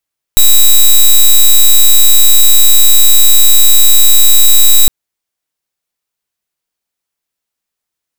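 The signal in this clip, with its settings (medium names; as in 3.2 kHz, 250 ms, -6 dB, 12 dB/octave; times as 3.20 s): pulse 3.88 kHz, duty 9% -3.5 dBFS 4.51 s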